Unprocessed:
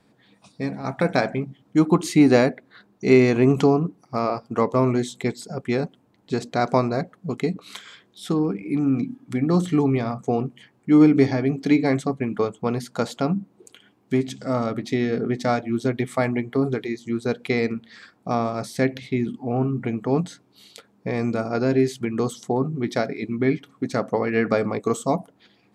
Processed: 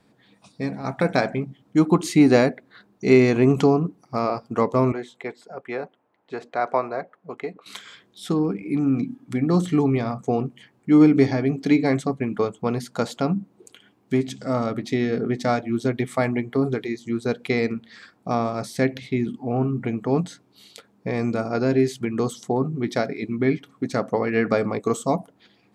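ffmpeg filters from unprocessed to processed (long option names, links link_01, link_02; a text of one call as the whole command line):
ffmpeg -i in.wav -filter_complex "[0:a]asettb=1/sr,asplit=3[link_01][link_02][link_03];[link_01]atrim=end=4.924[link_04];[link_02]atrim=start=4.92:end=7.66,asetpts=PTS-STARTPTS,afade=type=in:duration=0.004:curve=qsin,afade=type=out:start_time=2.736:duration=0.004:curve=qsin,acrossover=split=420 2600:gain=0.126 1 0.126[link_05][link_06][link_07];[link_05][link_06][link_07]amix=inputs=3:normalize=0[link_08];[link_03]atrim=start=7.656[link_09];[link_04][link_08]acrossfade=duration=0.004:curve1=hsin:curve2=qsin[link_10];[link_10][link_09]acrossfade=duration=0.004:curve1=qsin:curve2=hsin" out.wav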